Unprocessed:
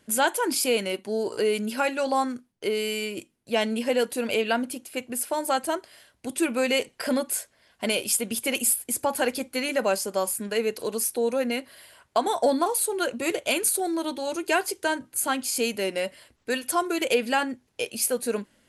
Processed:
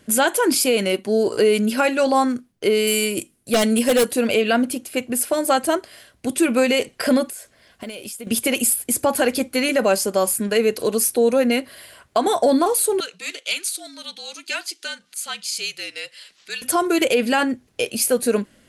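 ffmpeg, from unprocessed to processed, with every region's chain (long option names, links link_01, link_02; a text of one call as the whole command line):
ffmpeg -i in.wav -filter_complex "[0:a]asettb=1/sr,asplit=3[link_01][link_02][link_03];[link_01]atrim=end=2.874[link_04];[link_02]atrim=start=2.87:end=4.12,asetpts=PTS-STARTPTS,afade=type=in:duration=0.004:curve=qsin,afade=type=out:start_time=1.246:duration=0.004:curve=qsin,equalizer=frequency=10000:width_type=o:width=0.98:gain=12,aeval=exprs='0.119*(abs(mod(val(0)/0.119+3,4)-2)-1)':channel_layout=same[link_05];[link_03]atrim=start=4.116[link_06];[link_04][link_05]acrossfade=duration=0.004:curve1=hsin:curve2=qsin[link_07];[link_07][link_06]acrossfade=duration=0.004:curve1=qsin:curve2=hsin,asettb=1/sr,asplit=3[link_08][link_09][link_10];[link_08]atrim=end=7.274[link_11];[link_09]atrim=start=7.27:end=8.27,asetpts=PTS-STARTPTS,afade=type=in:duration=0.004:curve=qsin,afade=type=out:start_time=0.996:duration=0.004:curve=qsin,acompressor=threshold=-38dB:ratio=8:attack=3.2:release=140:knee=1:detection=peak,acrusher=bits=8:mode=log:mix=0:aa=0.000001[link_12];[link_10]atrim=start=8.266[link_13];[link_11][link_12]acrossfade=duration=0.004:curve1=hsin:curve2=qsin[link_14];[link_14][link_13]acrossfade=duration=0.004:curve1=qsin:curve2=hsin,asettb=1/sr,asplit=3[link_15][link_16][link_17];[link_15]atrim=end=13.004[link_18];[link_16]atrim=start=13:end=16.62,asetpts=PTS-STARTPTS,afade=type=in:duration=0.004:curve=qsin,afade=type=out:start_time=3.616:duration=0.004:curve=qsin,acompressor=mode=upward:threshold=-34dB:ratio=2.5:attack=3.2:release=140:knee=2.83:detection=peak,afreqshift=-55,bandpass=frequency=4200:width_type=q:width=1.3[link_19];[link_17]atrim=start=16.616[link_20];[link_18][link_19]acrossfade=duration=0.004:curve1=hsin:curve2=qsin[link_21];[link_21][link_20]acrossfade=duration=0.004:curve1=qsin:curve2=hsin,lowshelf=frequency=430:gain=3.5,bandreject=frequency=900:width=8.3,alimiter=level_in=14.5dB:limit=-1dB:release=50:level=0:latency=1,volume=-7.5dB" out.wav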